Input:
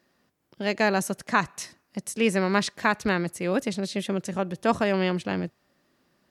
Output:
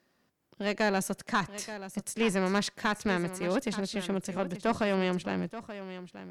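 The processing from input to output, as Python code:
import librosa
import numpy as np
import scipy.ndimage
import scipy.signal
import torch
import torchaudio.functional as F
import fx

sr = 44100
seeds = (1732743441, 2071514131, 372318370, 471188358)

y = fx.tube_stage(x, sr, drive_db=15.0, bias=0.3)
y = y + 10.0 ** (-13.0 / 20.0) * np.pad(y, (int(880 * sr / 1000.0), 0))[:len(y)]
y = y * 10.0 ** (-2.5 / 20.0)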